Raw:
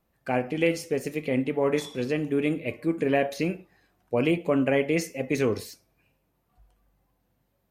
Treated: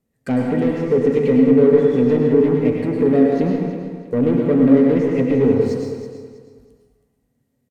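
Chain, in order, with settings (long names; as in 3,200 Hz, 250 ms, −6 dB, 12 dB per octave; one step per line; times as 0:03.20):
treble cut that deepens with the level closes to 1,300 Hz, closed at −23.5 dBFS
octave-band graphic EQ 125/1,000/8,000 Hz +9/−4/+10 dB
brickwall limiter −16.5 dBFS, peak gain reduction 5 dB
leveller curve on the samples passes 2
hollow resonant body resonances 250/430/1,900 Hz, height 14 dB, ringing for 55 ms
on a send: repeating echo 322 ms, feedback 30%, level −11 dB
on the sum: dense smooth reverb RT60 1.1 s, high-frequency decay 0.8×, pre-delay 90 ms, DRR 0.5 dB
level −3.5 dB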